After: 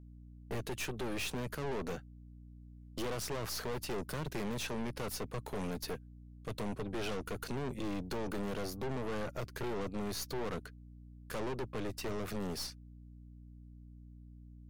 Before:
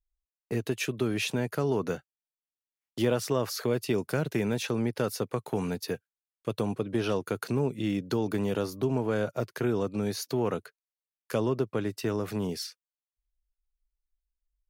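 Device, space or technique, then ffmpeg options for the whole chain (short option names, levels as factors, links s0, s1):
valve amplifier with mains hum: -af "aeval=exprs='(tanh(70.8*val(0)+0.7)-tanh(0.7))/70.8':c=same,aeval=exprs='val(0)+0.00224*(sin(2*PI*60*n/s)+sin(2*PI*2*60*n/s)/2+sin(2*PI*3*60*n/s)/3+sin(2*PI*4*60*n/s)/4+sin(2*PI*5*60*n/s)/5)':c=same,volume=1.19"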